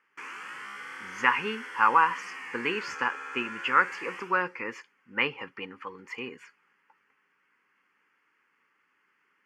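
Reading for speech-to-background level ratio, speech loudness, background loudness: 11.0 dB, −28.5 LKFS, −39.5 LKFS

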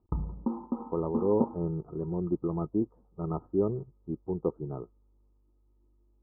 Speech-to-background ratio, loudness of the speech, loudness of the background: 2.5 dB, −32.5 LKFS, −35.0 LKFS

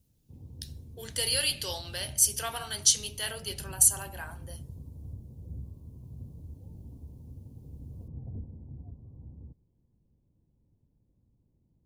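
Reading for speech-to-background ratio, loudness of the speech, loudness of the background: 20.0 dB, −26.0 LKFS, −46.0 LKFS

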